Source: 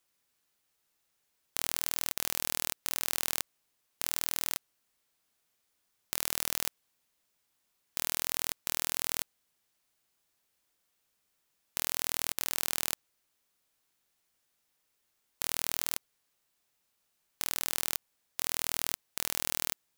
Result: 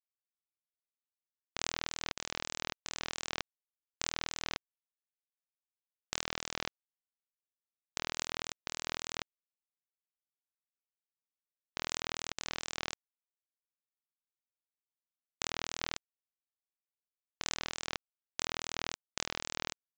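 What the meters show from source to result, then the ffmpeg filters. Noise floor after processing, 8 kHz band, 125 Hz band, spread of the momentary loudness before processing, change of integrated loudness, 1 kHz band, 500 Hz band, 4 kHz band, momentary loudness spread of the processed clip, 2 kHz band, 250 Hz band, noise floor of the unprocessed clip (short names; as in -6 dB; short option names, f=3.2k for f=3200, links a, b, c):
under -85 dBFS, -8.0 dB, 0.0 dB, 6 LU, -7.0 dB, 0.0 dB, 0.0 dB, -2.0 dB, 6 LU, -0.5 dB, 0.0 dB, -78 dBFS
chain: -af "adynamicequalizer=threshold=0.00178:dfrequency=3300:dqfactor=0.94:tfrequency=3300:tqfactor=0.94:attack=5:release=100:ratio=0.375:range=1.5:mode=cutabove:tftype=bell,aresample=16000,acrusher=bits=3:mix=0:aa=0.000001,aresample=44100"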